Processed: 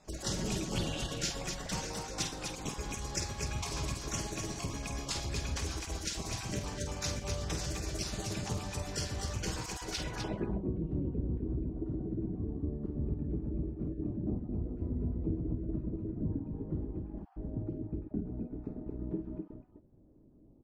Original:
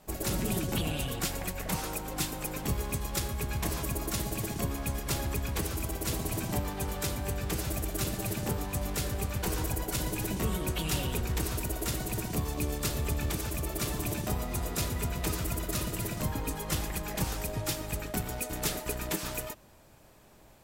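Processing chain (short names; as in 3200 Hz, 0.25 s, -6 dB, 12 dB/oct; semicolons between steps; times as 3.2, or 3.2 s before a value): random spectral dropouts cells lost 25%; low-pass sweep 6000 Hz -> 300 Hz, 9.92–10.47; loudspeakers at several distances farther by 17 m -7 dB, 87 m -6 dB; gain -4.5 dB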